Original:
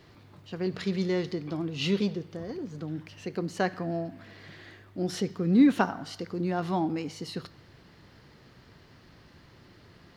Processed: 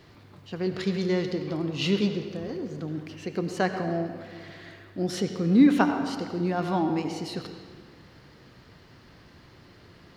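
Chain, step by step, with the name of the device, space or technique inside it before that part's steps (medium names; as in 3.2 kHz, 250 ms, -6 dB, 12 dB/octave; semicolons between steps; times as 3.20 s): filtered reverb send (on a send: high-pass 180 Hz + low-pass 6.4 kHz + reverberation RT60 1.7 s, pre-delay 78 ms, DRR 7 dB); on the sum: trim +2 dB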